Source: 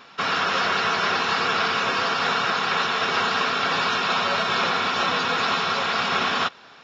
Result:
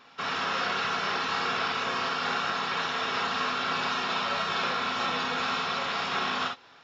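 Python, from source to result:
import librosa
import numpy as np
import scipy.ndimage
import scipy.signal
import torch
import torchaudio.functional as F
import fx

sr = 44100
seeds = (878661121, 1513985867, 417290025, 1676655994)

y = fx.rev_gated(x, sr, seeds[0], gate_ms=80, shape='rising', drr_db=2.5)
y = F.gain(torch.from_numpy(y), -8.5).numpy()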